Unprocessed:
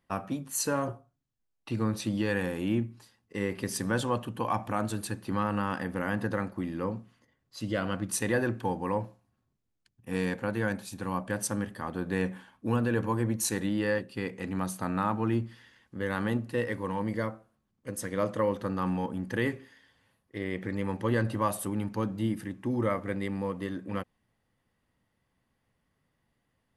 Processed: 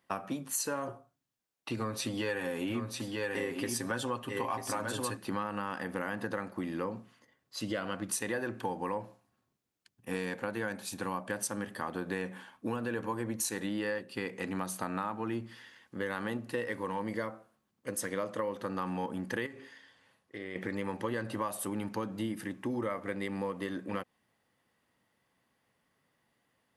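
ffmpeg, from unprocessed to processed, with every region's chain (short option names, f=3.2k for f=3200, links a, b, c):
-filter_complex "[0:a]asettb=1/sr,asplit=3[a][b][c];[a]atrim=end=1.764[d];[b]atrim=start=1.76:end=5.17,asetpts=PTS-STARTPTS,afade=t=in:d=0.004:c=qsin,afade=t=out:st=3.406:d=0.004:c=qsin,aecho=1:1:7.5:0.59,atrim=end_sample=150381,aecho=1:1:941:0.531,atrim=end_sample=150381[e];[c]atrim=start=5.166[f];[d][e]acrossfade=d=0.004:c1=hsin:c2=qsin[g];[g][f]acrossfade=d=0.004:c1=qsin:c2=hsin,asettb=1/sr,asplit=3[h][i][j];[h]atrim=end=19.464[k];[i]atrim=start=19.46:end=20.56,asetpts=PTS-STARTPTS,afade=t=in:d=0.004:c=qsin,afade=t=out:st=1.096:d=0.004:c=qsin,lowpass=9.2k,acompressor=threshold=-40dB:ratio=3:attack=3.2:release=140:knee=1:detection=peak,asplit=2[l][m];[m]adelay=44,volume=-13dB[n];[l][n]amix=inputs=2:normalize=0,atrim=end_sample=48510[o];[j]atrim=start=20.556[p];[k][o]acrossfade=d=0.004:c1=hsin:c2=qsin[q];[q][p]acrossfade=d=0.004:c1=qsin:c2=hsin,highpass=f=330:p=1,acompressor=threshold=-35dB:ratio=6,volume=4dB"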